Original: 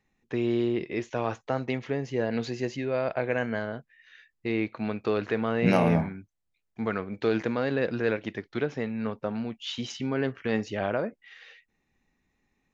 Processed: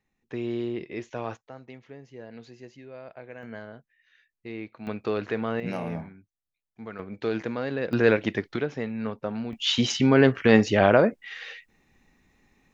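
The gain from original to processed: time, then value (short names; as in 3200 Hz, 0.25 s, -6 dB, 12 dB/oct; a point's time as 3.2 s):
-4 dB
from 1.37 s -15 dB
from 3.43 s -9 dB
from 4.87 s -1 dB
from 5.6 s -10 dB
from 6.99 s -2.5 dB
from 7.93 s +7 dB
from 8.56 s 0 dB
from 9.53 s +10.5 dB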